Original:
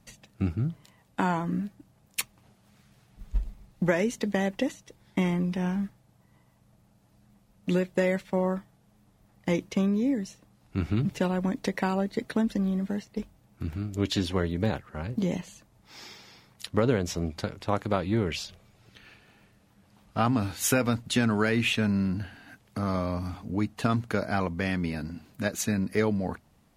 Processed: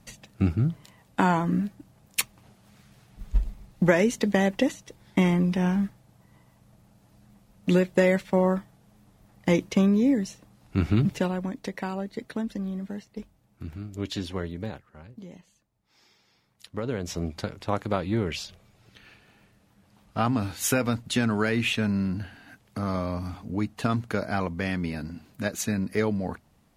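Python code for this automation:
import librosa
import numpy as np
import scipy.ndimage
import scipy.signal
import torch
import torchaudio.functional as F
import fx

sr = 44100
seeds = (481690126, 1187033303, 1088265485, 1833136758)

y = fx.gain(x, sr, db=fx.line((11.02, 4.5), (11.52, -4.5), (14.47, -4.5), (15.26, -16.0), (16.08, -16.0), (16.86, -7.0), (17.17, 0.0)))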